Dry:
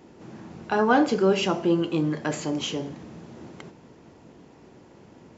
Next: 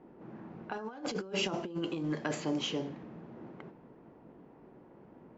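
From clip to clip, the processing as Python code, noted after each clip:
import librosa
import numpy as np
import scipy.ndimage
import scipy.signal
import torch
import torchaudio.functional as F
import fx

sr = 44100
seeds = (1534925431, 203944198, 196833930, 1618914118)

y = fx.env_lowpass(x, sr, base_hz=1300.0, full_db=-20.5)
y = fx.peak_eq(y, sr, hz=86.0, db=-10.0, octaves=0.69)
y = fx.over_compress(y, sr, threshold_db=-26.0, ratio=-0.5)
y = y * 10.0 ** (-8.0 / 20.0)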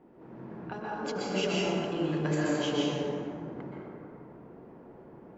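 y = fx.rev_plate(x, sr, seeds[0], rt60_s=2.5, hf_ratio=0.4, predelay_ms=110, drr_db=-6.0)
y = y * 10.0 ** (-2.0 / 20.0)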